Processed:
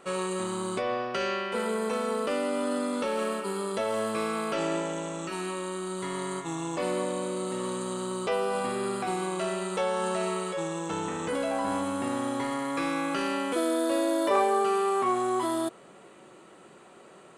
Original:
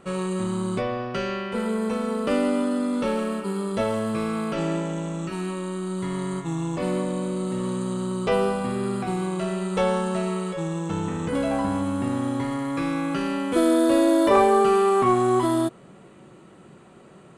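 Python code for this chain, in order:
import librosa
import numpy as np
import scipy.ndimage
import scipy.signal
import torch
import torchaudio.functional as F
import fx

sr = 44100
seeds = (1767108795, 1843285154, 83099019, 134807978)

p1 = fx.bass_treble(x, sr, bass_db=-15, treble_db=2)
p2 = fx.over_compress(p1, sr, threshold_db=-29.0, ratio=-0.5)
p3 = p1 + F.gain(torch.from_numpy(p2), -2.5).numpy()
y = F.gain(torch.from_numpy(p3), -5.5).numpy()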